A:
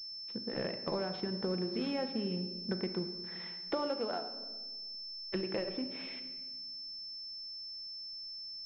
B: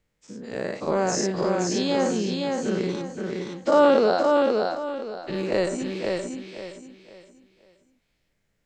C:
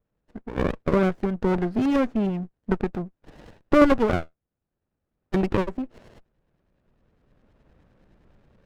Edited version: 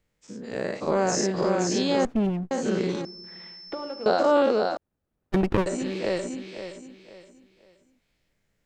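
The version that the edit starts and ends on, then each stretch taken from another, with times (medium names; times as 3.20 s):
B
2.05–2.51 s: from C
3.05–4.06 s: from A
4.77–5.66 s: from C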